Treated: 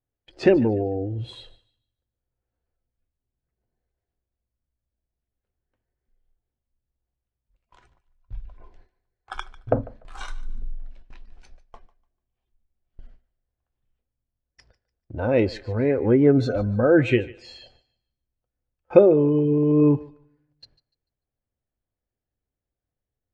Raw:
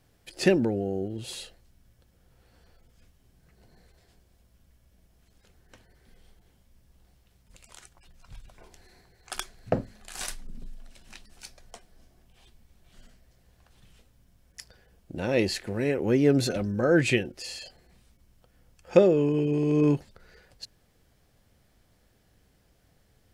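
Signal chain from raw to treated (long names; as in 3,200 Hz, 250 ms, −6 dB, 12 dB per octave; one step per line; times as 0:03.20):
noise reduction from a noise print of the clip's start 12 dB
noise gate with hold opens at −46 dBFS
parametric band 180 Hz −13.5 dB 0.23 octaves
in parallel at +0.5 dB: downward compressor, threshold −36 dBFS, peak gain reduction 22 dB
on the sum: head-to-tape spacing loss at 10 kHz 33 dB
feedback echo with a high-pass in the loop 147 ms, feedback 27%, high-pass 530 Hz, level −18.5 dB
on a send at −24 dB: convolution reverb RT60 0.75 s, pre-delay 5 ms
on the sum: level +5.5 dB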